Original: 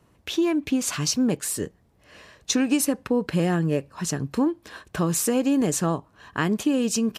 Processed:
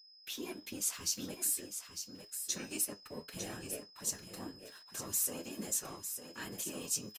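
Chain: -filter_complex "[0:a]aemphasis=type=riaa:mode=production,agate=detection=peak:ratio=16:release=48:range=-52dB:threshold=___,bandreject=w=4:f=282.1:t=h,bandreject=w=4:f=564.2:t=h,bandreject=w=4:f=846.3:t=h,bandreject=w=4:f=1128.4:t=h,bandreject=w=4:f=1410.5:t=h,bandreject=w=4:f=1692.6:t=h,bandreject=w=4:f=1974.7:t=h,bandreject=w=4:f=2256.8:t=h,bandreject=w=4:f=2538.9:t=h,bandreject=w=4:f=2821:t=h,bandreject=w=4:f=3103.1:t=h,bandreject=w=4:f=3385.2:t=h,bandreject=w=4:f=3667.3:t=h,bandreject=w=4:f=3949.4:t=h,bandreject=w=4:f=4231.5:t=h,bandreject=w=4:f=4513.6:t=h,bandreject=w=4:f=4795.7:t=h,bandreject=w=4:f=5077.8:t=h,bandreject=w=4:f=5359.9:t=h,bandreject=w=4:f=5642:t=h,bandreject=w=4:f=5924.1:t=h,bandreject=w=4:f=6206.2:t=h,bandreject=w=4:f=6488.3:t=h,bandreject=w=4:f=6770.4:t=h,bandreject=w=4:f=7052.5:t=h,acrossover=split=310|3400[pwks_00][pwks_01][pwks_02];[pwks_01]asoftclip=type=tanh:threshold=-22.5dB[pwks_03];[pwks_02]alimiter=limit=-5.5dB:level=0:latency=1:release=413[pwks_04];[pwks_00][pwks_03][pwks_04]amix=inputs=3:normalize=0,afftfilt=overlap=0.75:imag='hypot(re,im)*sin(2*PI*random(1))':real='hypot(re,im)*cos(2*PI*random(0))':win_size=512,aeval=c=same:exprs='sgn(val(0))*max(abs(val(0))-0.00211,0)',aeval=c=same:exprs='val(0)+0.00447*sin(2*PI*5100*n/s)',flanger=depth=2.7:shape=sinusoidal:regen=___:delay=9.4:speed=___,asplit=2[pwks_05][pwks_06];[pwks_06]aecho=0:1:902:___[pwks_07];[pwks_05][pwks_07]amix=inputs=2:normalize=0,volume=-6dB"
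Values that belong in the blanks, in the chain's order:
-48dB, 61, 1.4, 0.376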